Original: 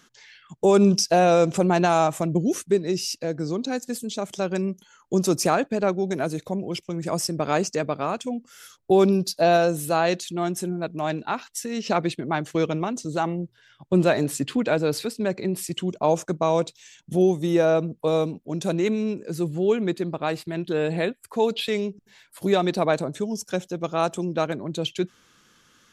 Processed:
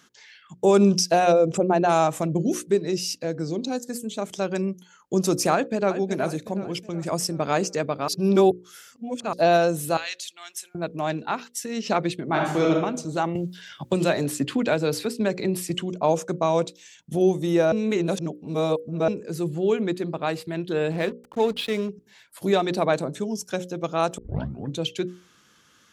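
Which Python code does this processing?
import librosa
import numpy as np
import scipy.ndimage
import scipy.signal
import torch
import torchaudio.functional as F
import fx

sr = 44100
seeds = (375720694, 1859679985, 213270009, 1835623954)

y = fx.envelope_sharpen(x, sr, power=1.5, at=(1.31, 1.88), fade=0.02)
y = fx.peak_eq(y, sr, hz=fx.line((3.48, 1000.0), (4.16, 5600.0)), db=-15.0, octaves=0.4, at=(3.48, 4.16), fade=0.02)
y = fx.echo_throw(y, sr, start_s=5.53, length_s=0.43, ms=370, feedback_pct=50, wet_db=-11.0)
y = fx.cheby1_highpass(y, sr, hz=2400.0, order=2, at=(9.97, 10.75))
y = fx.reverb_throw(y, sr, start_s=12.24, length_s=0.48, rt60_s=0.8, drr_db=-1.5)
y = fx.band_squash(y, sr, depth_pct=70, at=(13.35, 15.82))
y = fx.backlash(y, sr, play_db=-31.5, at=(20.91, 21.89))
y = fx.edit(y, sr, fx.reverse_span(start_s=8.08, length_s=1.25),
    fx.reverse_span(start_s=17.72, length_s=1.36),
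    fx.tape_start(start_s=24.18, length_s=0.6), tone=tone)
y = scipy.signal.sosfilt(scipy.signal.butter(2, 51.0, 'highpass', fs=sr, output='sos'), y)
y = fx.hum_notches(y, sr, base_hz=60, count=9)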